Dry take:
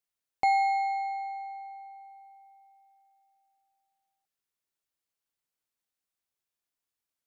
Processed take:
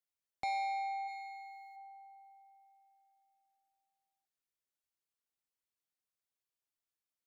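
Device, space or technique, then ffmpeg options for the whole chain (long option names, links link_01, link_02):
one-band saturation: -filter_complex "[0:a]acrossover=split=320|2600[link_01][link_02][link_03];[link_02]asoftclip=type=tanh:threshold=-27dB[link_04];[link_01][link_04][link_03]amix=inputs=3:normalize=0,asplit=3[link_05][link_06][link_07];[link_05]afade=type=out:start_time=1.07:duration=0.02[link_08];[link_06]tiltshelf=frequency=1300:gain=-9.5,afade=type=in:start_time=1.07:duration=0.02,afade=type=out:start_time=1.75:duration=0.02[link_09];[link_07]afade=type=in:start_time=1.75:duration=0.02[link_10];[link_08][link_09][link_10]amix=inputs=3:normalize=0,volume=-6.5dB"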